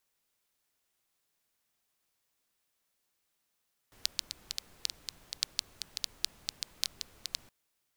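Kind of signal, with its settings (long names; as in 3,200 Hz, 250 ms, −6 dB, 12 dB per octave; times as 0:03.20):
rain-like ticks over hiss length 3.57 s, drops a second 6.2, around 4,400 Hz, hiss −18 dB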